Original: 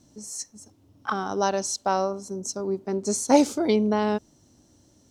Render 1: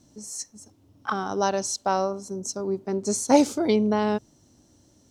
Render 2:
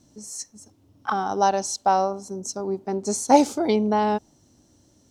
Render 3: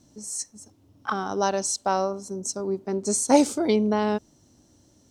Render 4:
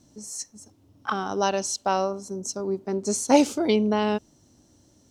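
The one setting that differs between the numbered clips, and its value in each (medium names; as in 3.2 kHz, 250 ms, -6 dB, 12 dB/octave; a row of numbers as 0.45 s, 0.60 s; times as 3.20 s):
dynamic bell, frequency: 120 Hz, 800 Hz, 8.5 kHz, 2.8 kHz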